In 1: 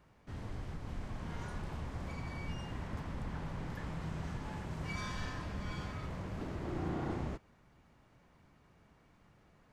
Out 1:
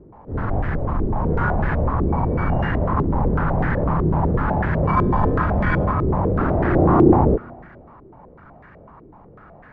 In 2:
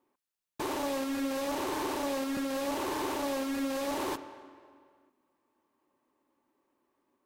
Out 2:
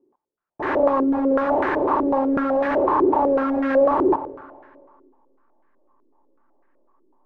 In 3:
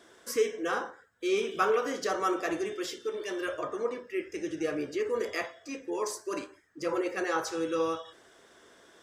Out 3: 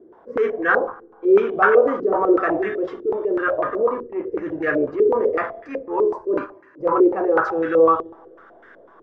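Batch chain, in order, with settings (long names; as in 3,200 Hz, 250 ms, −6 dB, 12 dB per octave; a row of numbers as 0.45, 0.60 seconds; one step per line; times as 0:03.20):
four-comb reverb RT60 2.4 s, combs from 26 ms, DRR 20 dB
transient designer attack −7 dB, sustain +1 dB
in parallel at −4 dB: slack as between gear wheels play −37 dBFS
on the sum: low-pass on a step sequencer 8 Hz 380–1,700 Hz
loudness normalisation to −20 LKFS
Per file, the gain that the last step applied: +17.5, +5.5, +5.0 decibels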